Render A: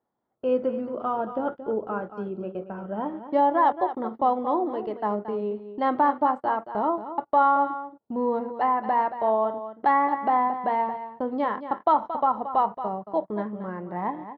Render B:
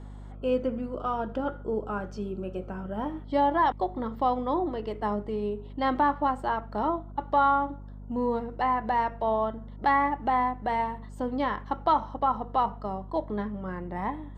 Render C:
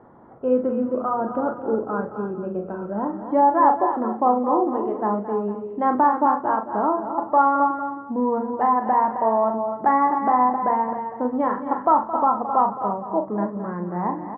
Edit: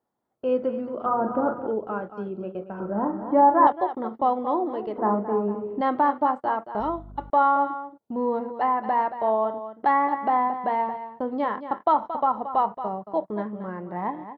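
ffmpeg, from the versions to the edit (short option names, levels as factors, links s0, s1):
-filter_complex "[2:a]asplit=3[s0][s1][s2];[0:a]asplit=5[s3][s4][s5][s6][s7];[s3]atrim=end=1.062[s8];[s0]atrim=start=1.058:end=1.672[s9];[s4]atrim=start=1.668:end=2.802[s10];[s1]atrim=start=2.798:end=3.672[s11];[s5]atrim=start=3.668:end=4.982[s12];[s2]atrim=start=4.978:end=5.812[s13];[s6]atrim=start=5.808:end=6.802[s14];[1:a]atrim=start=6.798:end=7.302[s15];[s7]atrim=start=7.298[s16];[s8][s9]acrossfade=d=0.004:c1=hsin:c2=hsin[s17];[s17][s10]acrossfade=d=0.004:c1=hsin:c2=hsin[s18];[s18][s11]acrossfade=d=0.004:c1=hsin:c2=hsin[s19];[s19][s12]acrossfade=d=0.004:c1=hsin:c2=hsin[s20];[s20][s13]acrossfade=d=0.004:c1=hsin:c2=hsin[s21];[s21][s14]acrossfade=d=0.004:c1=hsin:c2=hsin[s22];[s22][s15]acrossfade=d=0.004:c1=hsin:c2=hsin[s23];[s23][s16]acrossfade=d=0.004:c1=hsin:c2=hsin"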